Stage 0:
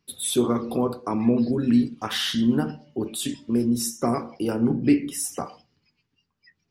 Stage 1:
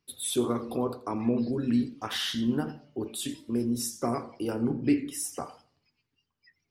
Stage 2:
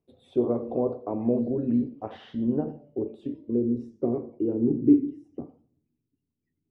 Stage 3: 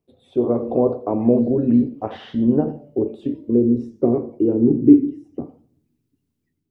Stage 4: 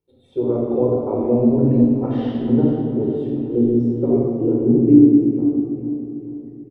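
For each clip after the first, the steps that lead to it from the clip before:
parametric band 190 Hz −8 dB 0.32 octaves; feedback echo with a swinging delay time 88 ms, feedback 32%, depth 182 cents, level −19 dB; level −5 dB
high shelf with overshoot 1,900 Hz +6.5 dB, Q 1.5; low-pass filter sweep 610 Hz → 300 Hz, 0:02.33–0:05.56
automatic gain control gain up to 7 dB; level +2 dB
repeating echo 442 ms, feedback 53%, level −12.5 dB; rectangular room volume 3,500 cubic metres, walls mixed, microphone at 4.4 metres; level −7 dB

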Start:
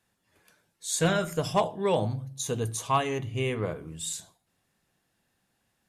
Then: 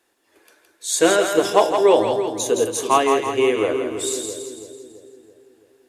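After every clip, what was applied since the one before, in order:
low shelf with overshoot 230 Hz −12.5 dB, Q 3
echo with a time of its own for lows and highs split 490 Hz, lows 333 ms, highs 166 ms, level −5.5 dB
level +7.5 dB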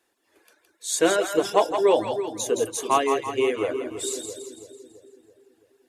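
reverb reduction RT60 0.6 s
level −4 dB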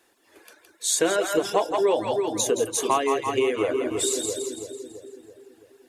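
downward compressor 3 to 1, threshold −30 dBFS, peak gain reduction 13 dB
level +8 dB

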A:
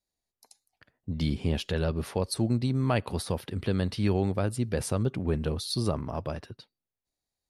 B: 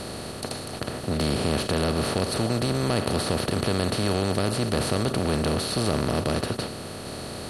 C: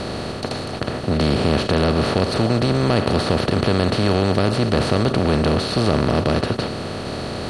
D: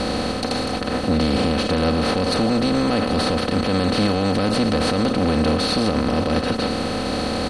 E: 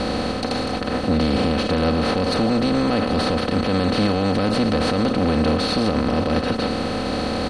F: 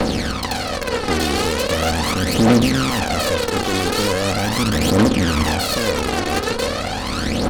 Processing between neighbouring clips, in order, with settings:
compressor on every frequency bin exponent 0.2; in parallel at −10 dB: hard clipping −19 dBFS, distortion −8 dB; on the sum: level −5.5 dB
reversed playback; upward compression, threshold −28 dBFS; reversed playback; high-frequency loss of the air 92 metres; level +7 dB
comb filter 3.9 ms, depth 65%; brickwall limiter −14 dBFS, peak gain reduction 10 dB; level +3 dB
high-shelf EQ 7,600 Hz −9 dB
harmonic generator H 6 −10 dB, 8 −8 dB, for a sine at −11 dBFS; phase shifter 0.4 Hz, delay 2.8 ms, feedback 62%; level −1.5 dB

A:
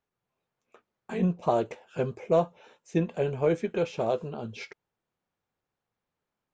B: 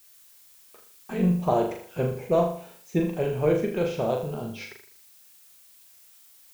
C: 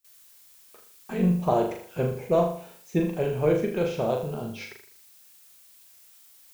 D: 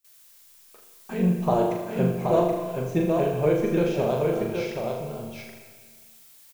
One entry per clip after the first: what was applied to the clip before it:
background noise blue −56 dBFS; low-shelf EQ 95 Hz +10 dB; on a send: flutter between parallel walls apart 6.8 metres, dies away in 0.51 s
noise gate with hold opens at −45 dBFS
single-tap delay 775 ms −4 dB; comb and all-pass reverb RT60 1.7 s, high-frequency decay 0.95×, pre-delay 25 ms, DRR 6.5 dB

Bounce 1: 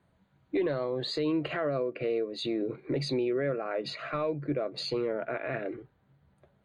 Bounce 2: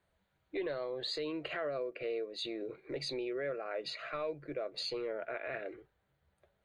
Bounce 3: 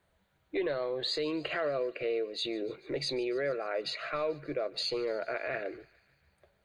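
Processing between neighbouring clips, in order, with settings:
graphic EQ with 10 bands 125 Hz −12 dB, 250 Hz −11 dB, 1,000 Hz −5 dB; level −2.5 dB
feedback echo with a high-pass in the loop 146 ms, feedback 70%, high-pass 1,000 Hz, level −21 dB; level +5 dB

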